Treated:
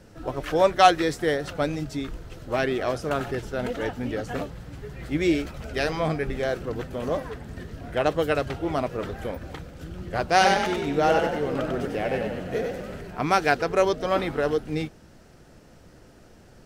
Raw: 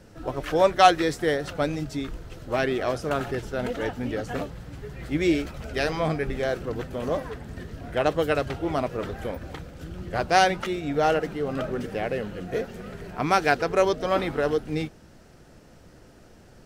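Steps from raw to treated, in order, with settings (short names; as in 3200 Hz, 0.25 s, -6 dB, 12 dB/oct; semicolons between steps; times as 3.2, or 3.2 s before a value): 10.31–13.01 frequency-shifting echo 96 ms, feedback 46%, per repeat +36 Hz, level -4 dB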